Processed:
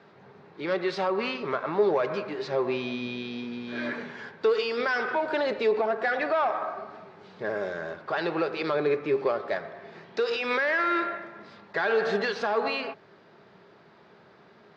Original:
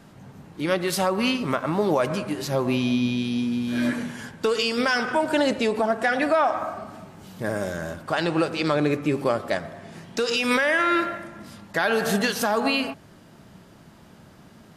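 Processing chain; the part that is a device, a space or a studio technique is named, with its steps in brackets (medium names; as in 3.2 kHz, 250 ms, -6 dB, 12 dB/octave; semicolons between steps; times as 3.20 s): overdrive pedal into a guitar cabinet (overdrive pedal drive 12 dB, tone 6.6 kHz, clips at -10 dBFS; cabinet simulation 110–4200 Hz, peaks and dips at 270 Hz -6 dB, 410 Hz +10 dB, 3 kHz -7 dB); trim -7.5 dB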